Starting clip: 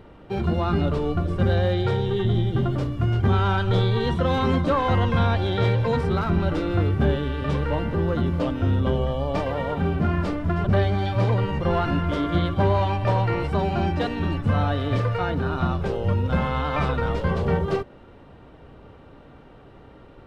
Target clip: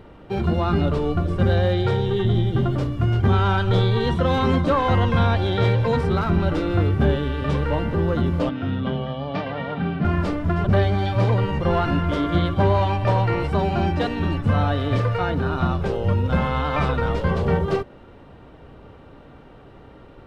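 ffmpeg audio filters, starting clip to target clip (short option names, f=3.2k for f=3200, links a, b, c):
-filter_complex "[0:a]asettb=1/sr,asplit=3[a][b][c];[a]atrim=end=8.494[d];[b]atrim=start=8.49:end=10.05,asetpts=PTS-STARTPTS,afade=t=in:d=0.004:c=qsin,afade=t=out:st=1.556:d=0.004:c=qsin,highpass=f=120:w=0.5412,highpass=f=120:w=1.3066,equalizer=f=360:t=q:w=4:g=-8,equalizer=f=530:t=q:w=4:g=-7,equalizer=f=970:t=q:w=4:g=-6,lowpass=f=4.5k:w=0.5412,lowpass=f=4.5k:w=1.3066[e];[c]atrim=start=10.046[f];[d][e]acrossfade=d=0.004:c1=hsin:c2=qsin[g];[g][f]acrossfade=d=0.004:c1=qsin:c2=hsin,volume=2dB"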